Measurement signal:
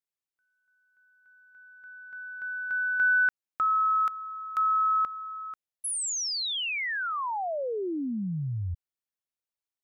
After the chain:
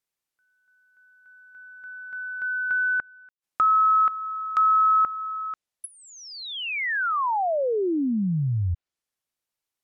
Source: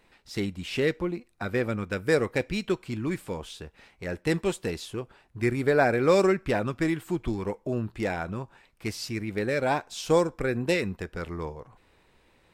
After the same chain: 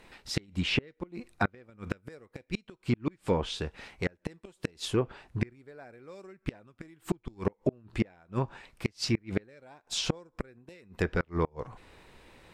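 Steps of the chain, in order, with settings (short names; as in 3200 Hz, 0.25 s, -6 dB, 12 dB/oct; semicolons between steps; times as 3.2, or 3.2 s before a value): flipped gate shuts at -21 dBFS, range -34 dB; treble ducked by the level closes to 1700 Hz, closed at -28 dBFS; gain +7 dB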